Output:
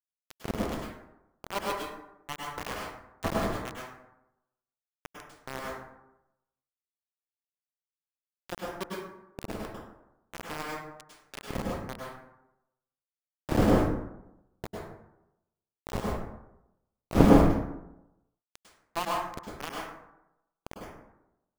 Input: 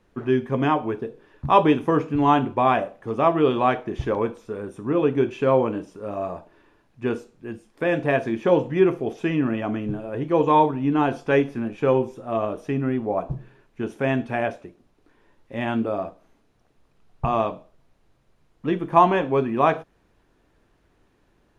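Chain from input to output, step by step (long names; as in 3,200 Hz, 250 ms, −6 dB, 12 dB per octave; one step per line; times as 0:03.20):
wind on the microphone 280 Hz −22 dBFS
power curve on the samples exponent 1.4
centre clipping without the shift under −17 dBFS
dense smooth reverb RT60 0.89 s, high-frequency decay 0.45×, pre-delay 90 ms, DRR −3 dB
level −10 dB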